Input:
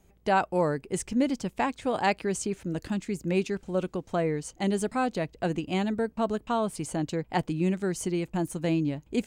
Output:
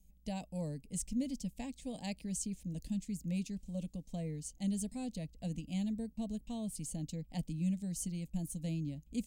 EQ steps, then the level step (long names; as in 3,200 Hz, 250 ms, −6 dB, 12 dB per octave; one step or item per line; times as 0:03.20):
guitar amp tone stack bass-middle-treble 10-0-1
high-shelf EQ 5,700 Hz +10 dB
phaser with its sweep stopped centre 370 Hz, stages 6
+10.0 dB